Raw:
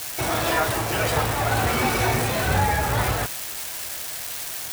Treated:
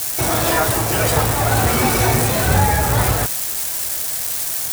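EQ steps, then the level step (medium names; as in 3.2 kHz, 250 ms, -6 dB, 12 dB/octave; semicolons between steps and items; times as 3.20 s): FFT filter 170 Hz 0 dB, 2.8 kHz -5 dB, 8.5 kHz +3 dB; +7.0 dB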